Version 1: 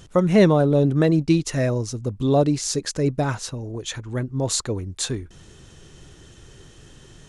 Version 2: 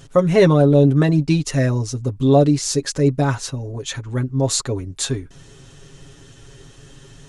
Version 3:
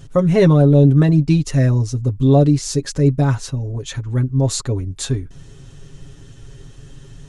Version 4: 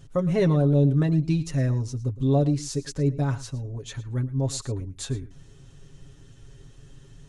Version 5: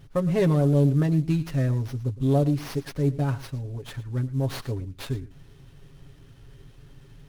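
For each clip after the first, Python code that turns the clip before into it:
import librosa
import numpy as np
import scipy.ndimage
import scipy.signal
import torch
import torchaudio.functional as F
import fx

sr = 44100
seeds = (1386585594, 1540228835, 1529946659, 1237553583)

y1 = x + 0.72 * np.pad(x, (int(7.3 * sr / 1000.0), 0))[:len(x)]
y1 = y1 * 10.0 ** (1.0 / 20.0)
y2 = fx.low_shelf(y1, sr, hz=200.0, db=11.0)
y2 = y2 * 10.0 ** (-3.0 / 20.0)
y3 = y2 + 10.0 ** (-17.5 / 20.0) * np.pad(y2, (int(111 * sr / 1000.0), 0))[:len(y2)]
y3 = y3 * 10.0 ** (-9.0 / 20.0)
y4 = fx.cvsd(y3, sr, bps=64000)
y4 = fx.running_max(y4, sr, window=5)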